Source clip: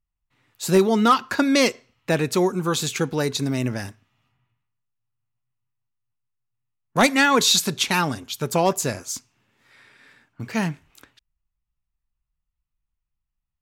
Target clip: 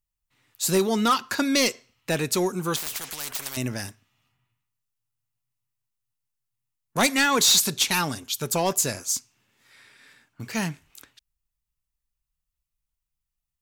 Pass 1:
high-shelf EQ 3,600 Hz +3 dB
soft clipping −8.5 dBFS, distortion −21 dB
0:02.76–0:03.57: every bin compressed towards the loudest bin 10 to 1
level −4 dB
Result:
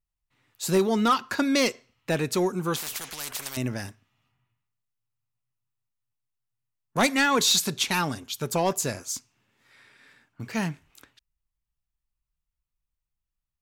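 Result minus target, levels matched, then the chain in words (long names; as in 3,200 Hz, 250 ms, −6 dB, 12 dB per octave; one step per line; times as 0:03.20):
8,000 Hz band −3.0 dB
high-shelf EQ 3,600 Hz +11.5 dB
soft clipping −8.5 dBFS, distortion −15 dB
0:02.76–0:03.57: every bin compressed towards the loudest bin 10 to 1
level −4 dB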